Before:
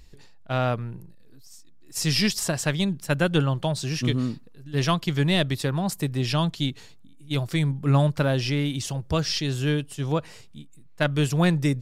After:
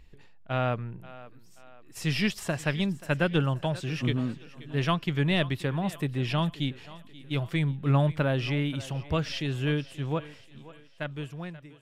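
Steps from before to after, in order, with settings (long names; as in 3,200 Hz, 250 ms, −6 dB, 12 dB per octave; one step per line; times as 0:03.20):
fade-out on the ending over 2.01 s
high shelf with overshoot 3,700 Hz −8 dB, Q 1.5
feedback echo with a high-pass in the loop 532 ms, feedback 46%, high-pass 250 Hz, level −17 dB
level −3.5 dB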